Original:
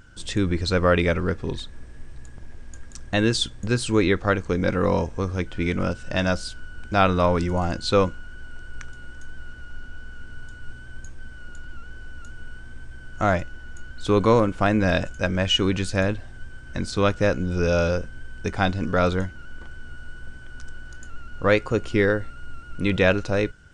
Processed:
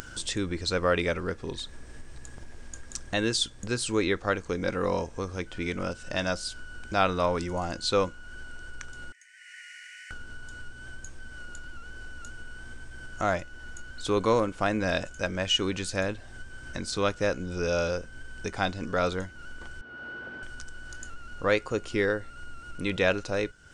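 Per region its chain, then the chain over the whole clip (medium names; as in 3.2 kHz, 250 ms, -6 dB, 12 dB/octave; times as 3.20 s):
9.12–10.11 s: rippled Chebyshev high-pass 1.8 kHz, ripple 3 dB + resonant high shelf 2.6 kHz -9.5 dB, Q 3
19.81–20.43 s: band-pass 370–3500 Hz + tilt EQ -3 dB/octave
whole clip: upward compressor, threshold -22 dBFS; tone controls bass -6 dB, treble +5 dB; trim -5 dB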